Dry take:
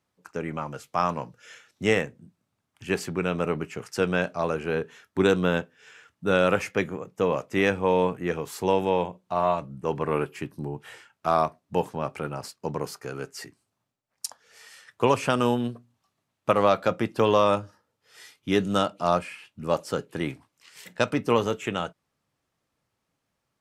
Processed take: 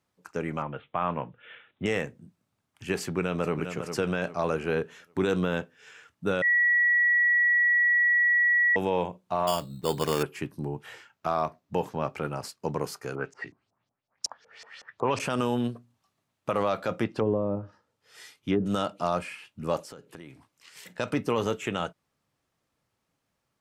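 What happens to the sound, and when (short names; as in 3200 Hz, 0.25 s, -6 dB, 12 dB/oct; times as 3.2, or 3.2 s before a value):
0.62–1.86 steep low-pass 3600 Hz 96 dB/oct
3.03–3.56 echo throw 0.4 s, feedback 35%, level -10.5 dB
6.42–8.76 bleep 1930 Hz -19 dBFS
9.47–10.23 sample-rate reducer 4000 Hz
10.86–12.25 bell 9300 Hz -10 dB 0.35 oct
13.15–15.2 LFO low-pass saw up 5.4 Hz 620–6600 Hz
17.03–18.66 treble ducked by the level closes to 360 Hz, closed at -16.5 dBFS
19.8–20.94 compressor, threshold -42 dBFS
whole clip: limiter -15.5 dBFS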